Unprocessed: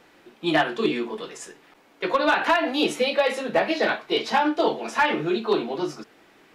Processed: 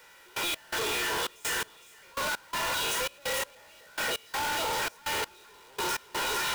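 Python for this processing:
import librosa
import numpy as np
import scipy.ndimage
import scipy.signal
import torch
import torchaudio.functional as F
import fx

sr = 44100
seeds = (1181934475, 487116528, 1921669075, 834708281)

y = fx.spec_trails(x, sr, decay_s=0.54)
y = scipy.signal.sosfilt(scipy.signal.butter(2, 830.0, 'highpass', fs=sr, output='sos'), y)
y = fx.high_shelf(y, sr, hz=10000.0, db=9.5)
y = fx.notch(y, sr, hz=4300.0, q=12.0)
y = y + 0.85 * np.pad(y, (int(2.1 * sr / 1000.0), 0))[:len(y)]
y = fx.echo_split(y, sr, split_hz=1100.0, low_ms=273, high_ms=460, feedback_pct=52, wet_db=-9.5)
y = fx.power_curve(y, sr, exponent=0.35)
y = np.clip(y, -10.0 ** (-23.0 / 20.0), 10.0 ** (-23.0 / 20.0))
y = y + 10.0 ** (-35.0 / 20.0) * np.sin(2.0 * np.pi * 1400.0 * np.arange(len(y)) / sr)
y = fx.step_gate(y, sr, bpm=83, pattern='..x.xxx.x.', floor_db=-24.0, edge_ms=4.5)
y = y * librosa.db_to_amplitude(-7.0)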